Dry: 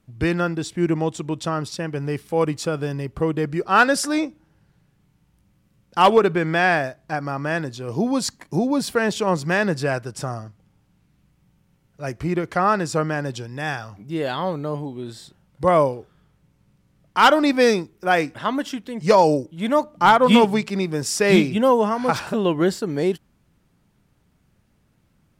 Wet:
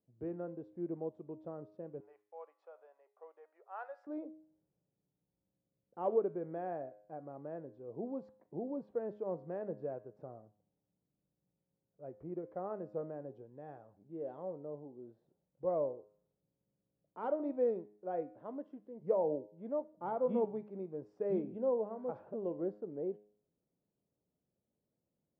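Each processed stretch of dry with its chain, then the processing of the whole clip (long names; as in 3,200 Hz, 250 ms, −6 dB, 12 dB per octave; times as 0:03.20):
0:02.00–0:04.07: downward expander −41 dBFS + inverse Chebyshev high-pass filter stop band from 220 Hz, stop band 60 dB + parametric band 2,200 Hz +3.5 dB 0.68 octaves
whole clip: Chebyshev low-pass filter 540 Hz, order 3; first difference; hum removal 104.1 Hz, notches 40; level +9 dB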